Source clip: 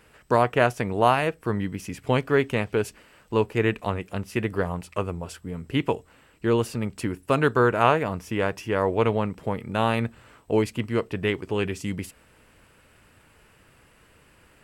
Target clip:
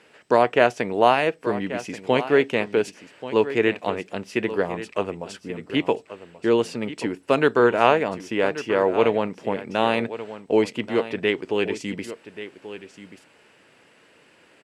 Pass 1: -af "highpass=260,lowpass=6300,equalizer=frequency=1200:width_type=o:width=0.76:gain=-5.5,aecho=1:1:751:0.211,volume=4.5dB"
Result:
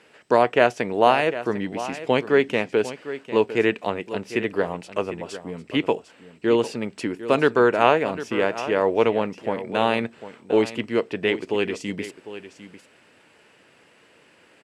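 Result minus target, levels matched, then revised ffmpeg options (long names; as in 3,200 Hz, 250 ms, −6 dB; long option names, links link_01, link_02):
echo 382 ms early
-af "highpass=260,lowpass=6300,equalizer=frequency=1200:width_type=o:width=0.76:gain=-5.5,aecho=1:1:1133:0.211,volume=4.5dB"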